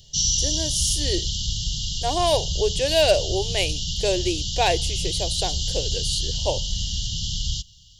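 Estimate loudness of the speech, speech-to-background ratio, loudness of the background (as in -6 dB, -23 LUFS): -25.0 LUFS, 0.5 dB, -25.5 LUFS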